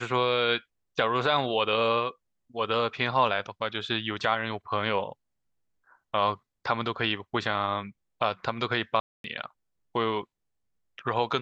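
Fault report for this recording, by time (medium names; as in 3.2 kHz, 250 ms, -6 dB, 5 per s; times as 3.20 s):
9.00–9.24 s: dropout 242 ms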